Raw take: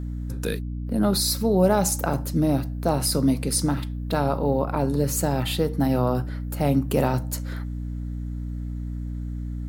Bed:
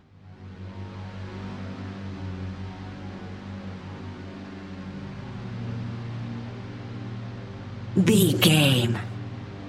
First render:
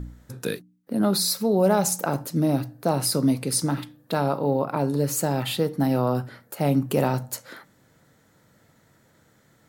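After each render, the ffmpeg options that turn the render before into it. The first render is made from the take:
-af "bandreject=f=60:t=h:w=4,bandreject=f=120:t=h:w=4,bandreject=f=180:t=h:w=4,bandreject=f=240:t=h:w=4,bandreject=f=300:t=h:w=4"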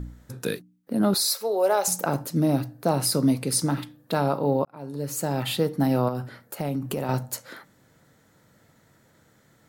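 -filter_complex "[0:a]asettb=1/sr,asplit=3[s0][s1][s2];[s0]atrim=end=1.144[s3];[s1]atrim=start=1.14:end=1.88,asetpts=PTS-STARTPTS,afade=t=in:d=0.004:c=qsin,afade=t=out:st=0.736:d=0.004:c=qsin,highpass=f=410:w=0.5412,highpass=f=410:w=1.3066[s4];[s2]atrim=start=1.876[s5];[s3][s4]acrossfade=d=0.004:c1=hsin:c2=qsin[s6];[s6][s5]acrossfade=d=0.004:c1=qsin:c2=hsin,asettb=1/sr,asplit=3[s7][s8][s9];[s7]atrim=end=6.084[s10];[s8]atrim=start=6.08:end=7.09,asetpts=PTS-STARTPTS,afade=t=in:d=0.004:c=qsin,afade=t=out:st=1.006:d=0.004:c=qsin,acompressor=threshold=0.0631:ratio=6:attack=3.2:release=140:knee=1:detection=peak[s11];[s9]atrim=start=7.086[s12];[s10][s11]acrossfade=d=0.004:c1=hsin:c2=qsin[s13];[s13][s12]acrossfade=d=0.004:c1=qsin:c2=hsin,asplit=2[s14][s15];[s14]atrim=end=4.65,asetpts=PTS-STARTPTS,afade=t=out:st=4.646:d=0.004:c=hsin[s16];[s15]atrim=start=4.65,asetpts=PTS-STARTPTS,afade=t=in:d=0.85[s17];[s16][s17]concat=n=2:v=0:a=1"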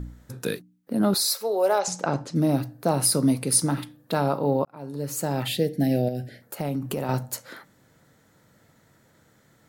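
-filter_complex "[0:a]asplit=3[s0][s1][s2];[s0]afade=t=out:st=1.78:d=0.02[s3];[s1]lowpass=f=6900:w=0.5412,lowpass=f=6900:w=1.3066,afade=t=in:st=1.78:d=0.02,afade=t=out:st=2.34:d=0.02[s4];[s2]afade=t=in:st=2.34:d=0.02[s5];[s3][s4][s5]amix=inputs=3:normalize=0,asettb=1/sr,asplit=3[s6][s7][s8];[s6]atrim=end=2.984[s9];[s7]atrim=start=2.98:end=3.97,asetpts=PTS-STARTPTS,afade=t=in:d=0.004:c=qsin,afade=t=out:st=0.986:d=0.004:c=qsin,equalizer=f=9800:t=o:w=0.21:g=7.5[s10];[s8]atrim=start=3.966[s11];[s9][s10]acrossfade=d=0.004:c1=hsin:c2=qsin[s12];[s12][s11]acrossfade=d=0.004:c1=qsin:c2=hsin,asettb=1/sr,asplit=3[s13][s14][s15];[s13]atrim=end=5.484[s16];[s14]atrim=start=5.48:end=6.42,asetpts=PTS-STARTPTS,afade=t=in:d=0.004:c=qsin,afade=t=out:st=0.936:d=0.004:c=qsin,asuperstop=centerf=1100:order=8:qfactor=1.2[s17];[s15]atrim=start=6.416[s18];[s16][s17]acrossfade=d=0.004:c1=hsin:c2=qsin[s19];[s19][s18]acrossfade=d=0.004:c1=qsin:c2=hsin"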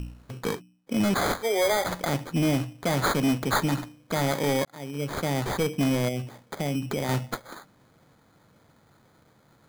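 -af "acrusher=samples=16:mix=1:aa=0.000001,asoftclip=type=hard:threshold=0.106"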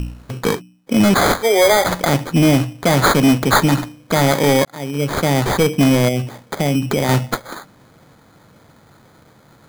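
-af "volume=3.55"

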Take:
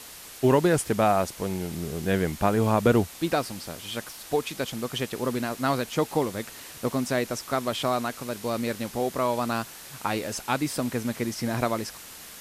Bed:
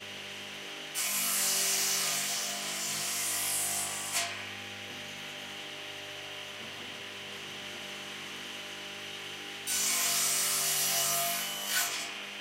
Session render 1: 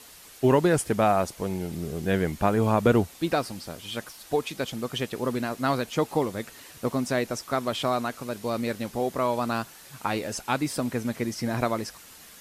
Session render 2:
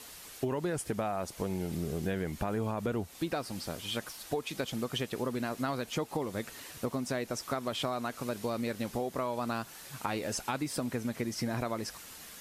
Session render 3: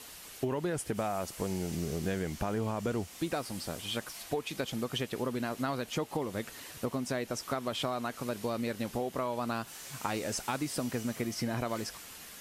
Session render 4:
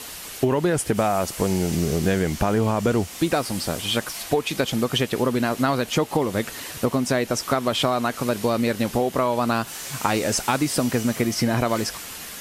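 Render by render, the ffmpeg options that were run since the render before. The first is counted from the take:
-af "afftdn=nr=6:nf=-44"
-af "alimiter=limit=0.188:level=0:latency=1:release=30,acompressor=threshold=0.0316:ratio=6"
-filter_complex "[1:a]volume=0.1[s0];[0:a][s0]amix=inputs=2:normalize=0"
-af "volume=3.98"

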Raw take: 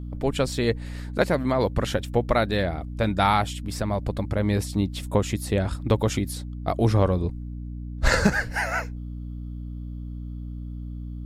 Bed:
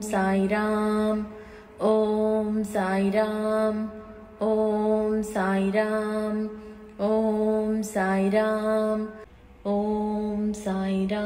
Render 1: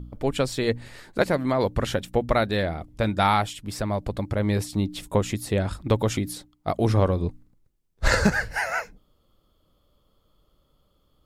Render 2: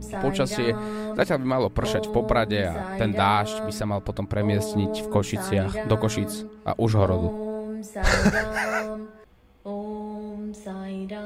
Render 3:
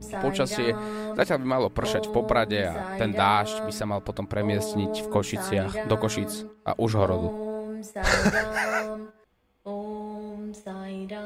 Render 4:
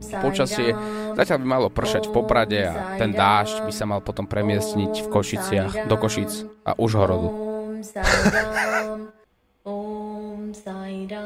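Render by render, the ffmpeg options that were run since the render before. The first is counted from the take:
-af "bandreject=f=60:t=h:w=4,bandreject=f=120:t=h:w=4,bandreject=f=180:t=h:w=4,bandreject=f=240:t=h:w=4,bandreject=f=300:t=h:w=4"
-filter_complex "[1:a]volume=0.447[s0];[0:a][s0]amix=inputs=2:normalize=0"
-af "agate=range=0.355:threshold=0.01:ratio=16:detection=peak,lowshelf=f=190:g=-6.5"
-af "volume=1.58,alimiter=limit=0.708:level=0:latency=1"

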